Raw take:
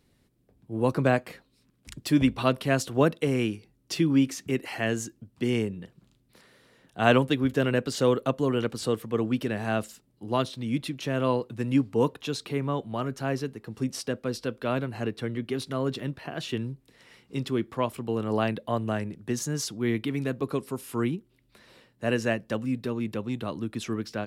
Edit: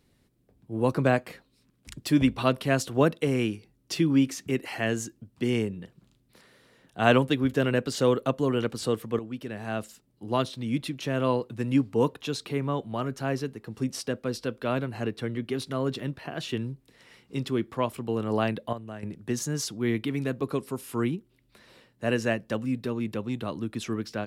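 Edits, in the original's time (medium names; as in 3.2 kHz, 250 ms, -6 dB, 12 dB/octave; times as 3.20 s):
9.19–10.31 s: fade in, from -12 dB
18.73–19.03 s: gain -11 dB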